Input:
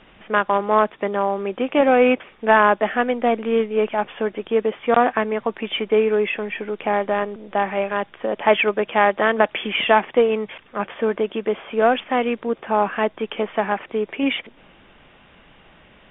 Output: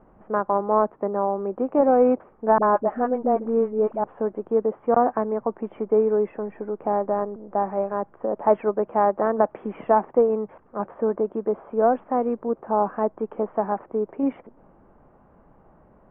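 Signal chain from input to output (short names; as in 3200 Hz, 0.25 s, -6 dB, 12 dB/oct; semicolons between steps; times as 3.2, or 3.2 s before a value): LPF 1100 Hz 24 dB/oct; 2.58–4.04 dispersion highs, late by 49 ms, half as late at 500 Hz; gain -2 dB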